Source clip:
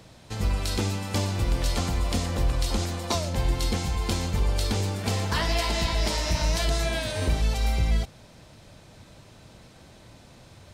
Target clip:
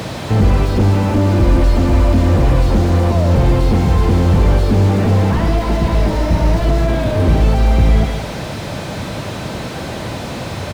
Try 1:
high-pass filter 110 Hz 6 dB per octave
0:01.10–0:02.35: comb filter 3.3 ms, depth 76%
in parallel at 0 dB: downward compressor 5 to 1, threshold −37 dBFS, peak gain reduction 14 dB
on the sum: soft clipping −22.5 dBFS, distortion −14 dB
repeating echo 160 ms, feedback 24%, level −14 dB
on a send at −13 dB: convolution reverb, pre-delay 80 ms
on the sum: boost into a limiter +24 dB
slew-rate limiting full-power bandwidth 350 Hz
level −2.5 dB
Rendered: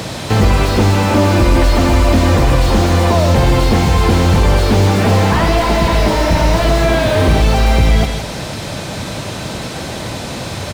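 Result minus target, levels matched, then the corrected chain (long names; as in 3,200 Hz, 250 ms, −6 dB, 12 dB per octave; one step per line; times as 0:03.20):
slew-rate limiting: distortion −4 dB
high-pass filter 110 Hz 6 dB per octave
0:01.10–0:02.35: comb filter 3.3 ms, depth 76%
in parallel at 0 dB: downward compressor 5 to 1, threshold −37 dBFS, peak gain reduction 14 dB
on the sum: soft clipping −22.5 dBFS, distortion −14 dB
repeating echo 160 ms, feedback 24%, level −14 dB
on a send at −13 dB: convolution reverb, pre-delay 80 ms
on the sum: boost into a limiter +24 dB
slew-rate limiting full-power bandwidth 127 Hz
level −2.5 dB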